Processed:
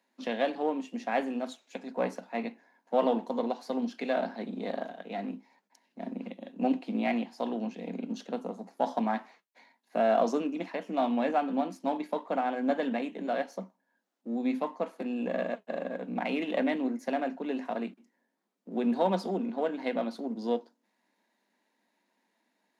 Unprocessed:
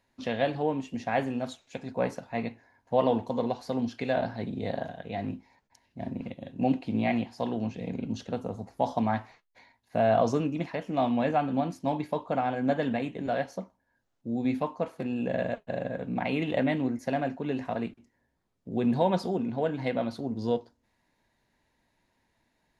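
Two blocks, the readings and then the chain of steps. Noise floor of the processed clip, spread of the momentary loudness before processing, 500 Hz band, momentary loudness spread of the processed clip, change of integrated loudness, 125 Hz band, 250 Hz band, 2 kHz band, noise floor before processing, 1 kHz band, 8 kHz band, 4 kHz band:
−78 dBFS, 10 LU, −1.5 dB, 10 LU, −2.0 dB, −12.5 dB, −2.0 dB, −1.5 dB, −75 dBFS, −1.0 dB, can't be measured, −1.5 dB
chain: gain on one half-wave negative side −3 dB
Chebyshev high-pass filter 190 Hz, order 6

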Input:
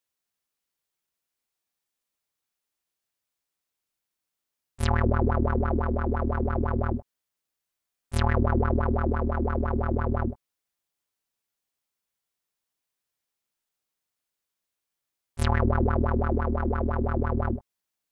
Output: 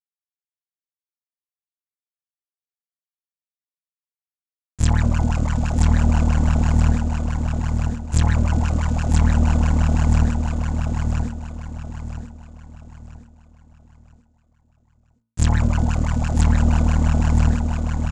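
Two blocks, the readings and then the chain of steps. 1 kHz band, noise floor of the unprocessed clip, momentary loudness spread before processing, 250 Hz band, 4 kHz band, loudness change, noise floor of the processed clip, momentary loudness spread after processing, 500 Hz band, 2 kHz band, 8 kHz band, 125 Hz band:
+0.5 dB, below −85 dBFS, 7 LU, +6.0 dB, +8.5 dB, +6.5 dB, below −85 dBFS, 13 LU, −4.0 dB, +3.0 dB, +16.0 dB, +9.5 dB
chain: lower of the sound and its delayed copy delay 1.2 ms
reverb reduction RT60 1.4 s
low shelf with overshoot 280 Hz +8 dB, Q 1.5
in parallel at −2 dB: brickwall limiter −14 dBFS, peak gain reduction 7 dB
on the sum: centre clipping without the shift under −35.5 dBFS
low-pass with resonance 7,100 Hz, resonance Q 7
hum removal 56.84 Hz, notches 27
on a send: repeating echo 977 ms, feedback 35%, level −3 dB
on the sum: level −2 dB

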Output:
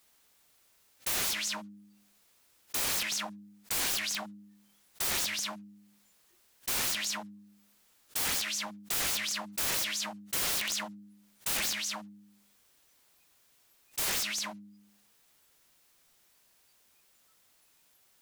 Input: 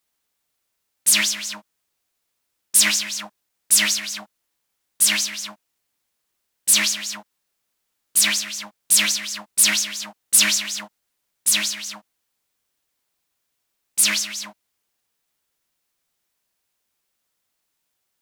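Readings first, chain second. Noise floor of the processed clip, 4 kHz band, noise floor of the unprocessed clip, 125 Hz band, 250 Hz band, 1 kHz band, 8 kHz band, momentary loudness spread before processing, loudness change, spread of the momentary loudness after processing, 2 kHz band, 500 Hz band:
−67 dBFS, −11.5 dB, −76 dBFS, can't be measured, −8.0 dB, −2.5 dB, −15.0 dB, 16 LU, −13.0 dB, 11 LU, −11.0 dB, −1.5 dB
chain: noise reduction from a noise print of the clip's start 20 dB
wrap-around overflow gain 18.5 dB
hum removal 102.1 Hz, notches 3
envelope flattener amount 50%
level −7.5 dB

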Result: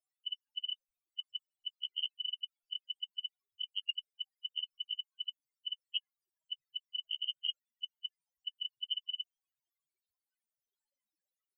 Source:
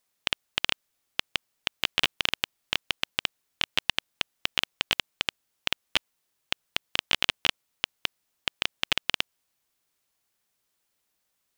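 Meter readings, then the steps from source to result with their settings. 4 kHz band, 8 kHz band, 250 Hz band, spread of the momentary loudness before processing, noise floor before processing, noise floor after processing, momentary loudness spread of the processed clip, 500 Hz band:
−7.5 dB, below −40 dB, below −40 dB, 8 LU, −78 dBFS, below −85 dBFS, 9 LU, below −40 dB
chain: spectral peaks only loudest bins 4
level +1.5 dB

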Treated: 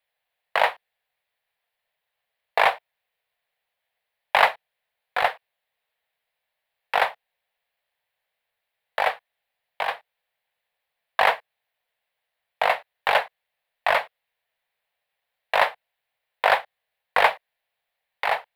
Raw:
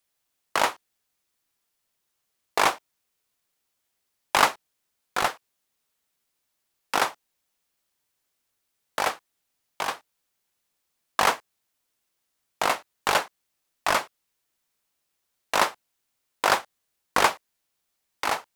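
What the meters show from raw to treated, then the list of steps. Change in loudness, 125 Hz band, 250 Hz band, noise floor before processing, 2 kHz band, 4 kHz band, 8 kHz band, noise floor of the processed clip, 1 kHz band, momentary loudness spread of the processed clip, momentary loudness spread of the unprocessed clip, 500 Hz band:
+2.0 dB, can't be measured, below −10 dB, −78 dBFS, +4.0 dB, −0.5 dB, below −15 dB, −83 dBFS, +2.0 dB, 12 LU, 13 LU, +4.0 dB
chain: drawn EQ curve 160 Hz 0 dB, 330 Hz −13 dB, 470 Hz +8 dB, 710 Hz +13 dB, 1,300 Hz +3 dB, 1,800 Hz +13 dB, 4,000 Hz +5 dB, 6,200 Hz −14 dB, 12,000 Hz −2 dB
level −6.5 dB

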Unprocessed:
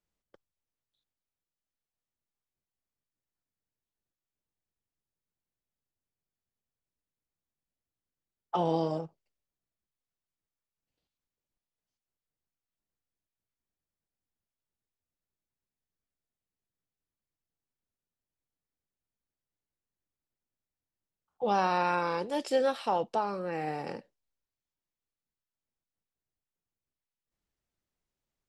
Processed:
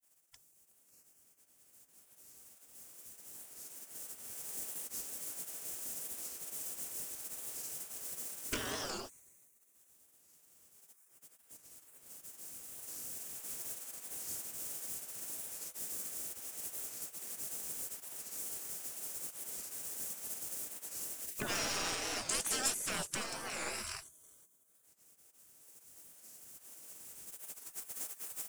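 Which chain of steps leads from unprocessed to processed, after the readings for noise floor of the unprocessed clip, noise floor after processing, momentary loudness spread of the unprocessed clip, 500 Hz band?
below −85 dBFS, −68 dBFS, 11 LU, −14.5 dB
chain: camcorder AGC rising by 6.5 dB per second
high-shelf EQ 3,600 Hz +9.5 dB
in parallel at 0 dB: downward compressor, threshold −46 dBFS, peak gain reduction 25 dB
on the sum: soft clipping −24.5 dBFS, distortion −10 dB
delay with a high-pass on its return 186 ms, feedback 51%, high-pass 2,900 Hz, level −9 dB
gate on every frequency bin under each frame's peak −20 dB weak
octave-band graphic EQ 1,000/2,000/4,000/8,000 Hz −6/−5/−11/+6 dB
floating-point word with a short mantissa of 2 bits
wow of a warped record 45 rpm, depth 160 cents
level +11 dB

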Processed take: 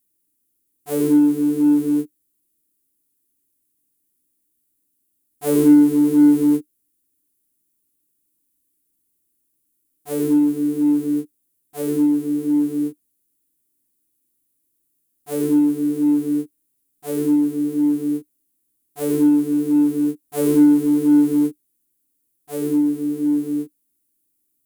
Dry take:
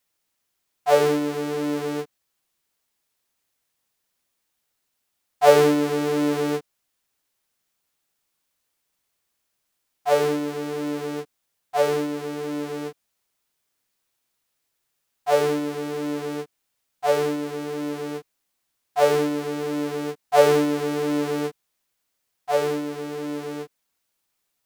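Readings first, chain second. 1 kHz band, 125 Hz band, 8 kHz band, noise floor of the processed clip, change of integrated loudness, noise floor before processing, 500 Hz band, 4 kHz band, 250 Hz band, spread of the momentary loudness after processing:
−13.0 dB, +1.5 dB, +1.5 dB, −71 dBFS, +5.5 dB, −77 dBFS, −5.0 dB, below −10 dB, +12.5 dB, 13 LU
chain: drawn EQ curve 200 Hz 0 dB, 300 Hz +11 dB, 630 Hz −21 dB, 5,500 Hz −11 dB, 10,000 Hz +5 dB
in parallel at −8.5 dB: hard clipping −18.5 dBFS, distortion −8 dB

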